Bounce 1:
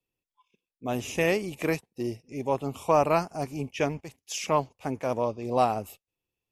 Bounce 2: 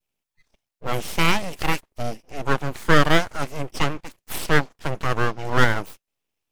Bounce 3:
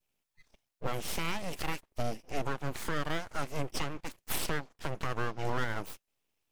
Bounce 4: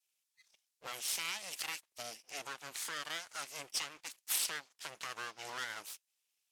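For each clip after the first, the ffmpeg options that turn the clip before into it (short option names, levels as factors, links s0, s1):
-af "adynamicequalizer=threshold=0.0158:dfrequency=1400:dqfactor=0.81:tfrequency=1400:tqfactor=0.81:attack=5:release=100:ratio=0.375:range=2.5:mode=boostabove:tftype=bell,aeval=exprs='abs(val(0))':c=same,volume=2.11"
-af "acompressor=threshold=0.0631:ratio=3,alimiter=limit=0.106:level=0:latency=1:release=340"
-af "bandpass=f=7600:t=q:w=0.59:csg=0,volume=1.78"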